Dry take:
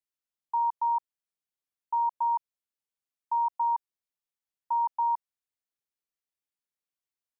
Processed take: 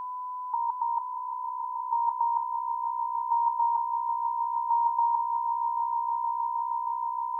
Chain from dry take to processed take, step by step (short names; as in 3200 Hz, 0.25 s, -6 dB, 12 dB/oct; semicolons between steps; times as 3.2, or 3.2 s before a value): negative-ratio compressor -31 dBFS, ratio -0.5; fixed phaser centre 670 Hz, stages 6; swelling echo 0.157 s, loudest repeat 8, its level -13 dB; whine 1000 Hz -39 dBFS; gain +6.5 dB